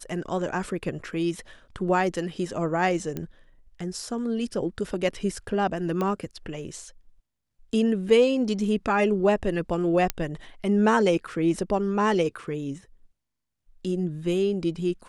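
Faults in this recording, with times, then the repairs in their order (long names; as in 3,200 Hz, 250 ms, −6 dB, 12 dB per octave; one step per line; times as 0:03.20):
0:03.17: click −18 dBFS
0:06.01: click −16 dBFS
0:10.10: click −8 dBFS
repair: click removal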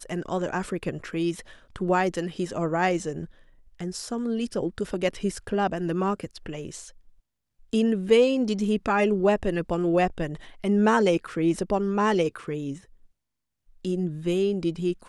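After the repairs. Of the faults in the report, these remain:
none of them is left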